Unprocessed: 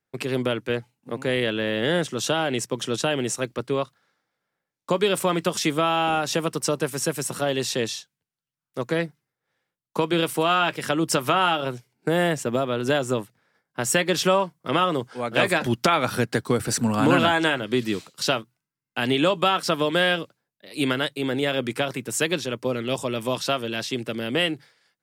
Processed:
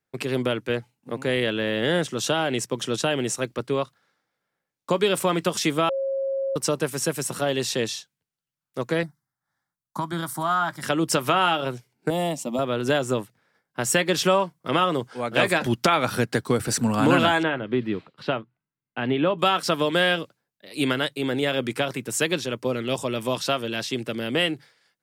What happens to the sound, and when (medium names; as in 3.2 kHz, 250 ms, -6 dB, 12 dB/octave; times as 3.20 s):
5.89–6.56 s: bleep 542 Hz -23 dBFS
9.03–10.83 s: static phaser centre 1.1 kHz, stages 4
12.10–12.59 s: static phaser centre 420 Hz, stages 6
17.43–19.39 s: distance through air 440 m